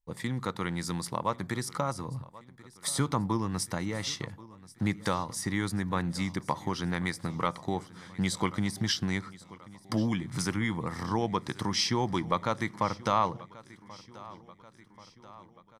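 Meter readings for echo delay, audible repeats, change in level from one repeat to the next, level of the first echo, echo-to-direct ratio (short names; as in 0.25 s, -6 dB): 1.084 s, 4, -5.0 dB, -20.0 dB, -18.5 dB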